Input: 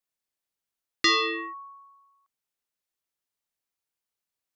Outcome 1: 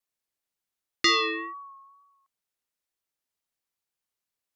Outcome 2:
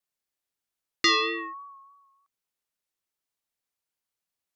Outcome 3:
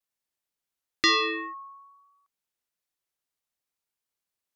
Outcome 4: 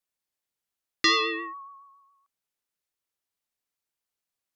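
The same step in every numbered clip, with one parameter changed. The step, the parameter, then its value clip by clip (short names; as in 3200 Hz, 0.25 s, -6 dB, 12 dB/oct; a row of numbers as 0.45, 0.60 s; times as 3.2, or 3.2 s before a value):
vibrato, rate: 2.1, 3.2, 0.55, 7.2 Hz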